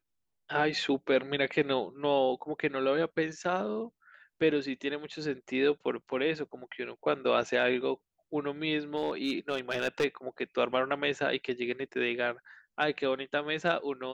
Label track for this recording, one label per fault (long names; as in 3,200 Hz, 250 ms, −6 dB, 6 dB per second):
8.970000	10.050000	clipping −23.5 dBFS